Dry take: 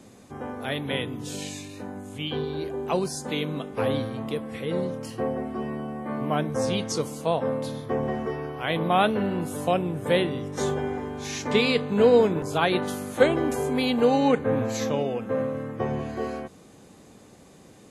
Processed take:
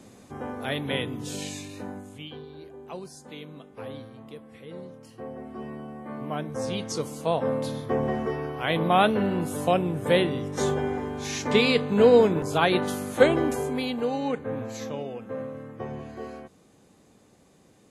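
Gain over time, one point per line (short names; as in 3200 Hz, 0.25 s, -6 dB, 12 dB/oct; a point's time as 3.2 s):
1.91 s 0 dB
2.4 s -13 dB
5.09 s -13 dB
5.63 s -6 dB
6.42 s -6 dB
7.58 s +1 dB
13.4 s +1 dB
14.06 s -7.5 dB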